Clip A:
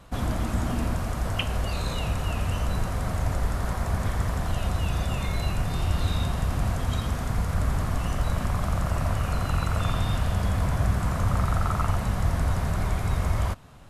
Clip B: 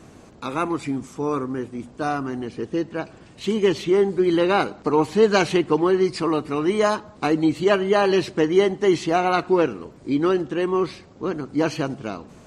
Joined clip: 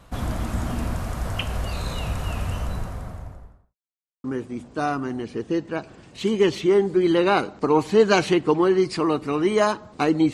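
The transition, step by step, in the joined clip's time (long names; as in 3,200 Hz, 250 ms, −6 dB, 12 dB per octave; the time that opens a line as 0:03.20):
clip A
0:02.34–0:03.76: fade out and dull
0:03.76–0:04.24: silence
0:04.24: continue with clip B from 0:01.47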